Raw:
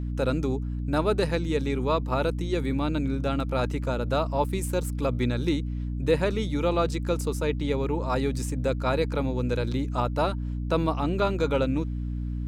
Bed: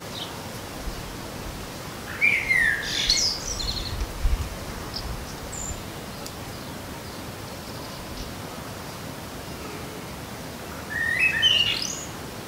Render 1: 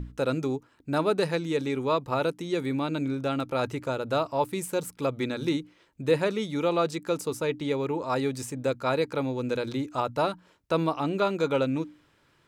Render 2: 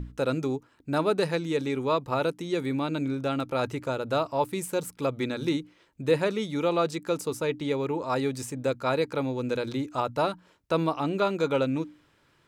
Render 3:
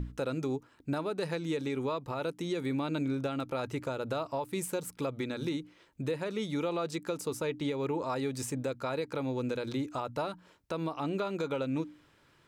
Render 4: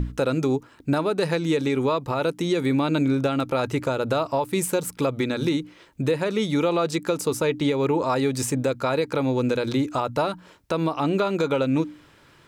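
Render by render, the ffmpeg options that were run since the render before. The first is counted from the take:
-af "bandreject=f=60:t=h:w=6,bandreject=f=120:t=h:w=6,bandreject=f=180:t=h:w=6,bandreject=f=240:t=h:w=6,bandreject=f=300:t=h:w=6"
-af anull
-af "acompressor=threshold=0.0501:ratio=3,alimiter=limit=0.0631:level=0:latency=1:release=225"
-af "volume=3.35"

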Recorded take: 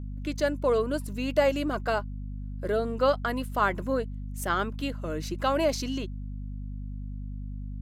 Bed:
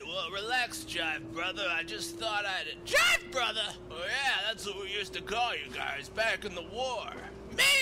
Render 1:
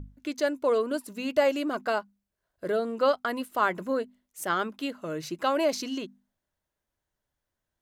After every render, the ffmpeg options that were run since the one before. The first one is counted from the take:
-af "bandreject=f=50:t=h:w=6,bandreject=f=100:t=h:w=6,bandreject=f=150:t=h:w=6,bandreject=f=200:t=h:w=6,bandreject=f=250:t=h:w=6"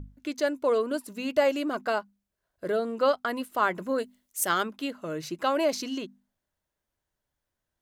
-filter_complex "[0:a]asettb=1/sr,asplit=3[s0][s1][s2];[s0]atrim=end=3.984[s3];[s1]atrim=start=3.98:end=4.63,asetpts=PTS-STARTPTS,afade=t=in:d=0.004:c=qsin,afade=t=out:st=0.646:d=0.004:c=qsin,highshelf=f=3500:g=11.5[s4];[s2]atrim=start=4.626[s5];[s3][s4]acrossfade=d=0.004:c1=hsin:c2=qsin[s6];[s6][s5]acrossfade=d=0.004:c1=qsin:c2=hsin"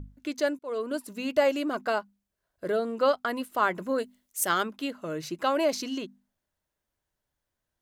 -filter_complex "[0:a]asplit=2[s0][s1];[s0]atrim=end=0.59,asetpts=PTS-STARTPTS,afade=t=out:st=0.586:d=0.004:c=hsin[s2];[s1]atrim=start=0.59,asetpts=PTS-STARTPTS,afade=t=in:d=0.54:c=qsin[s3];[s2][s3]concat=n=2:v=0:a=1"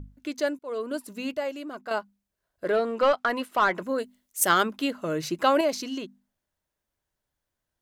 -filter_complex "[0:a]asettb=1/sr,asplit=3[s0][s1][s2];[s0]atrim=end=2.644[s3];[s1]atrim=start=2.64:end=3.83,asetpts=PTS-STARTPTS,afade=t=in:d=0.004:c=qsin,afade=t=out:st=1.186:d=0.004:c=qsin,asplit=2[s4][s5];[s5]highpass=f=720:p=1,volume=5.01,asoftclip=type=tanh:threshold=0.237[s6];[s4][s6]amix=inputs=2:normalize=0,lowpass=f=2700:p=1,volume=0.501[s7];[s2]atrim=start=3.826[s8];[s3][s7]acrossfade=d=0.004:c1=hsin:c2=qsin[s9];[s9][s8]acrossfade=d=0.004:c1=qsin:c2=hsin,asettb=1/sr,asplit=3[s10][s11][s12];[s10]atrim=end=4.414[s13];[s11]atrim=start=4.41:end=5.61,asetpts=PTS-STARTPTS,afade=t=in:d=0.004:c=qsin,afade=t=out:st=1.196:d=0.004:c=qsin,acontrast=26[s14];[s12]atrim=start=5.606[s15];[s13][s14]acrossfade=d=0.004:c1=hsin:c2=qsin[s16];[s16][s15]acrossfade=d=0.004:c1=qsin:c2=hsin,asplit=3[s17][s18][s19];[s17]atrim=end=1.342[s20];[s18]atrim=start=1.338:end=1.912,asetpts=PTS-STARTPTS,volume=0.422[s21];[s19]atrim=start=1.908[s22];[s20][s21]acrossfade=d=0.004:c1=hsin:c2=hsin[s23];[s23][s22]acrossfade=d=0.004:c1=hsin:c2=hsin"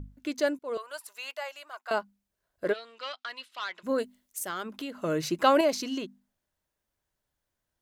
-filter_complex "[0:a]asettb=1/sr,asplit=3[s0][s1][s2];[s0]atrim=end=0.774[s3];[s1]atrim=start=0.77:end=1.91,asetpts=PTS-STARTPTS,afade=t=in:d=0.004:c=qsin,afade=t=out:st=1.136:d=0.004:c=qsin,highpass=f=750:w=0.5412,highpass=f=750:w=1.3066[s4];[s2]atrim=start=1.906[s5];[s3][s4]acrossfade=d=0.004:c1=hsin:c2=qsin[s6];[s6][s5]acrossfade=d=0.004:c1=qsin:c2=hsin,asplit=3[s7][s8][s9];[s7]afade=t=out:st=2.72:d=0.02[s10];[s8]bandpass=f=3800:t=q:w=1.8,afade=t=in:st=2.72:d=0.02,afade=t=out:st=3.83:d=0.02[s11];[s9]afade=t=in:st=3.83:d=0.02[s12];[s10][s11][s12]amix=inputs=3:normalize=0,asettb=1/sr,asplit=3[s13][s14][s15];[s13]atrim=end=4.384[s16];[s14]atrim=start=4.38:end=4.99,asetpts=PTS-STARTPTS,afade=t=in:d=0.004:c=qsin,afade=t=out:st=0.606:d=0.004:c=qsin,acompressor=threshold=0.0158:ratio=3:attack=3.2:release=140:knee=1:detection=peak[s17];[s15]atrim=start=4.986[s18];[s16][s17]acrossfade=d=0.004:c1=hsin:c2=qsin[s19];[s19][s18]acrossfade=d=0.004:c1=qsin:c2=hsin"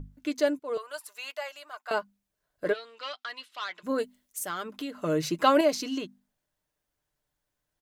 -af "aecho=1:1:6.7:0.36"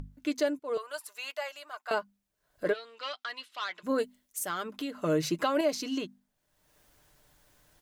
-af "alimiter=limit=0.133:level=0:latency=1:release=336,acompressor=mode=upward:threshold=0.00447:ratio=2.5"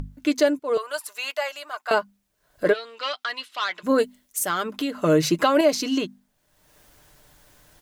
-af "volume=2.82"

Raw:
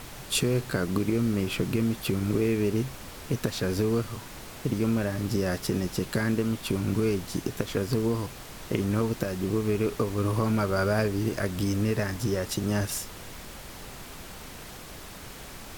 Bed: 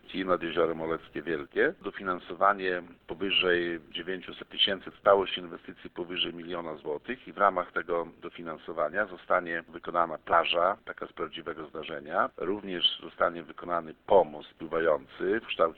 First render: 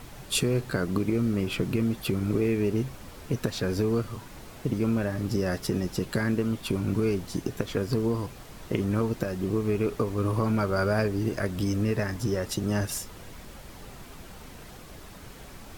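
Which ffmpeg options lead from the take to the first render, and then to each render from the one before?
-af "afftdn=nr=6:nf=-43"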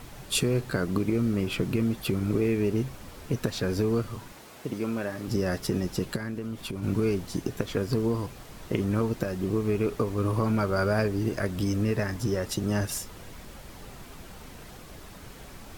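-filter_complex "[0:a]asettb=1/sr,asplit=3[s0][s1][s2];[s0]atrim=end=4.324[s3];[s1]atrim=start=4.32:end=5.28,asetpts=PTS-STARTPTS,afade=t=in:d=0.004:c=qsin,afade=t=out:st=0.956:d=0.004:c=qsin,highpass=f=330:p=1[s4];[s2]atrim=start=5.276[s5];[s3][s4]acrossfade=d=0.004:c1=hsin:c2=qsin[s6];[s6][s5]acrossfade=d=0.004:c1=qsin:c2=hsin,asplit=3[s7][s8][s9];[s7]afade=t=out:st=6.15:d=0.02[s10];[s8]acompressor=threshold=0.0251:ratio=3:attack=3.2:release=140:knee=1:detection=peak,afade=t=in:st=6.15:d=0.02,afade=t=out:st=6.82:d=0.02[s11];[s9]afade=t=in:st=6.82:d=0.02[s12];[s10][s11][s12]amix=inputs=3:normalize=0"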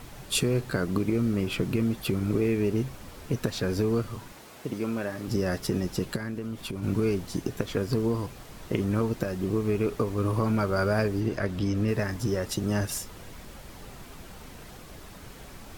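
-filter_complex "[0:a]asettb=1/sr,asplit=3[s0][s1][s2];[s0]atrim=end=11.204[s3];[s1]atrim=start=11.2:end=11.88,asetpts=PTS-STARTPTS,afade=t=in:d=0.004:c=qsin,afade=t=out:st=0.676:d=0.004:c=qsin,acrossover=split=5600[s4][s5];[s5]acompressor=threshold=0.00141:ratio=4:attack=1:release=60[s6];[s4][s6]amix=inputs=2:normalize=0[s7];[s2]atrim=start=11.876[s8];[s3][s7]acrossfade=d=0.004:c1=hsin:c2=qsin[s9];[s9][s8]acrossfade=d=0.004:c1=qsin:c2=hsin"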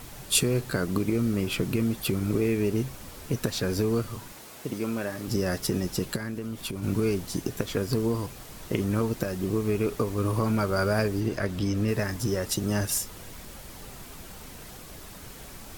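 -af "highshelf=f=5300:g=8"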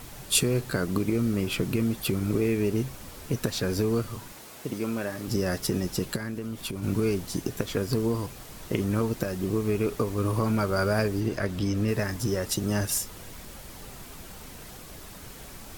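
-af anull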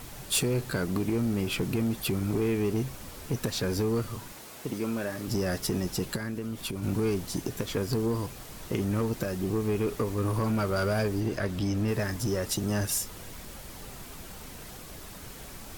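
-af "asoftclip=type=tanh:threshold=0.0944"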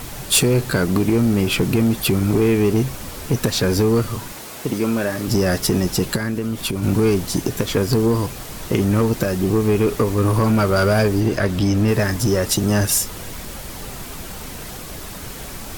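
-af "volume=3.55"

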